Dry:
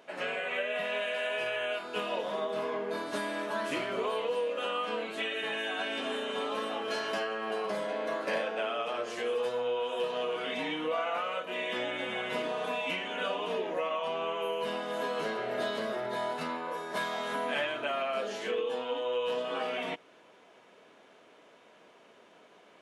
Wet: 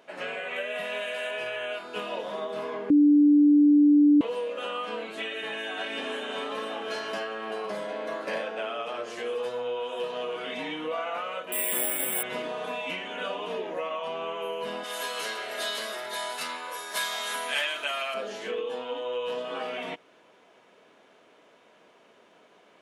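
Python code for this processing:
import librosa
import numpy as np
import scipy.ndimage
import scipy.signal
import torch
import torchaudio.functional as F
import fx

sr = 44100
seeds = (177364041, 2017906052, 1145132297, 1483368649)

y = fx.high_shelf(x, sr, hz=8700.0, db=12.0, at=(0.56, 1.31))
y = fx.echo_throw(y, sr, start_s=5.24, length_s=0.67, ms=530, feedback_pct=50, wet_db=-5.5)
y = fx.resample_bad(y, sr, factor=4, down='filtered', up='zero_stuff', at=(11.52, 12.23))
y = fx.tilt_eq(y, sr, slope=5.0, at=(14.83, 18.13), fade=0.02)
y = fx.edit(y, sr, fx.bleep(start_s=2.9, length_s=1.31, hz=293.0, db=-14.5), tone=tone)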